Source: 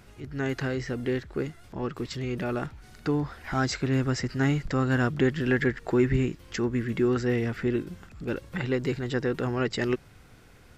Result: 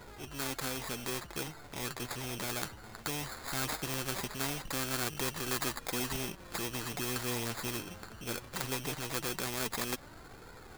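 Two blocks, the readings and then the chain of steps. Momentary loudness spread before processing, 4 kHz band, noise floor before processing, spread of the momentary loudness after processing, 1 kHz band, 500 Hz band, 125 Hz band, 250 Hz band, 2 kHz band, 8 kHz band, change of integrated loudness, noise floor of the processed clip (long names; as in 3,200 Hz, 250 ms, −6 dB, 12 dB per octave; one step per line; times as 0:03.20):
9 LU, +2.0 dB, −53 dBFS, 7 LU, −4.0 dB, −12.5 dB, −14.0 dB, −14.0 dB, −6.5 dB, can't be measured, −8.0 dB, −52 dBFS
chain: sample-rate reduction 2,900 Hz, jitter 0%
flanger 0.19 Hz, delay 2 ms, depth 7.7 ms, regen +40%
every bin compressed towards the loudest bin 2 to 1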